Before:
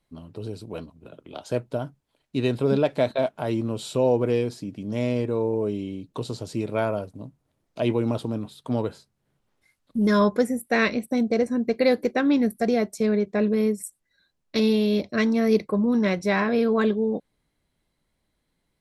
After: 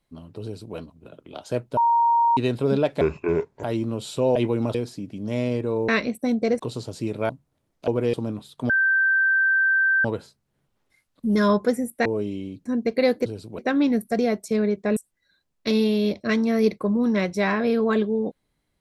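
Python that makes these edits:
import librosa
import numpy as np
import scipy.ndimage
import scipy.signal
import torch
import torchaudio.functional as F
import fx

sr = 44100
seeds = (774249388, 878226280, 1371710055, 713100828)

y = fx.edit(x, sr, fx.duplicate(start_s=0.43, length_s=0.33, to_s=12.08),
    fx.bleep(start_s=1.77, length_s=0.6, hz=934.0, db=-15.5),
    fx.speed_span(start_s=3.01, length_s=0.4, speed=0.64),
    fx.swap(start_s=4.13, length_s=0.26, other_s=7.81, other_length_s=0.39),
    fx.swap(start_s=5.53, length_s=0.6, other_s=10.77, other_length_s=0.71),
    fx.cut(start_s=6.83, length_s=0.4),
    fx.insert_tone(at_s=8.76, length_s=1.35, hz=1560.0, db=-16.5),
    fx.cut(start_s=13.46, length_s=0.39), tone=tone)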